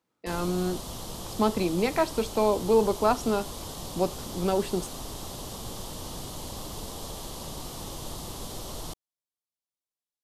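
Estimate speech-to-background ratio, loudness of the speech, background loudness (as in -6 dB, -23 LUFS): 10.5 dB, -27.5 LUFS, -38.0 LUFS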